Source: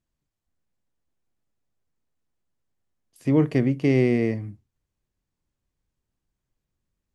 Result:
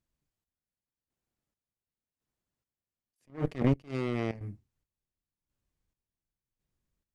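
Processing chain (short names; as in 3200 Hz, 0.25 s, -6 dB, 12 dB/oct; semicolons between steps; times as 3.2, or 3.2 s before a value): added harmonics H 3 -13 dB, 5 -28 dB, 7 -44 dB, 8 -22 dB, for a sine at -7.5 dBFS; in parallel at -3 dB: crossover distortion -35 dBFS; 3.3–4.41 on the sum: level quantiser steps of 13 dB; chopper 0.91 Hz, depth 65%, duty 40%; attack slew limiter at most 220 dB/s; gain +3.5 dB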